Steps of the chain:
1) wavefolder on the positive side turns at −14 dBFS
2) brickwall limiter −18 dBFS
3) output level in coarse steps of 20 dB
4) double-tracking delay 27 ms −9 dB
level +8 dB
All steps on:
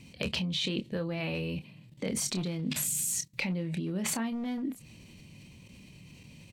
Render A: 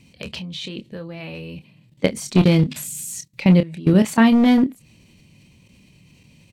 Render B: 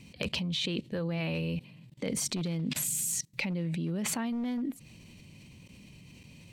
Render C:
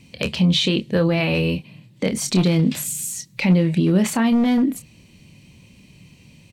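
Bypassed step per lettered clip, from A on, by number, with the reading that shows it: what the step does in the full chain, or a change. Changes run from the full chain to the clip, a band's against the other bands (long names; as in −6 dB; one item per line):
2, average gain reduction 2.0 dB
4, 125 Hz band +1.5 dB
3, change in crest factor −6.0 dB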